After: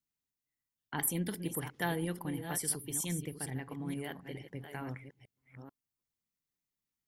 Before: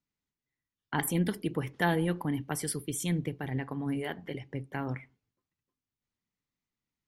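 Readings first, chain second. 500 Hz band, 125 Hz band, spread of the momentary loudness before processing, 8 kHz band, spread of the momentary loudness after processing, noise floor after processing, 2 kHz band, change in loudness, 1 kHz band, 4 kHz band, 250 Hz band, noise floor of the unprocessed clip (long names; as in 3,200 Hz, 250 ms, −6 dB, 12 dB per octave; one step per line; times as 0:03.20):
−6.5 dB, −6.5 dB, 9 LU, +2.5 dB, 16 LU, below −85 dBFS, −5.5 dB, −4.0 dB, −6.0 dB, −3.5 dB, −6.5 dB, below −85 dBFS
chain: delay that plays each chunk backwards 438 ms, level −8.5 dB
high-shelf EQ 6,100 Hz +12 dB
level −7 dB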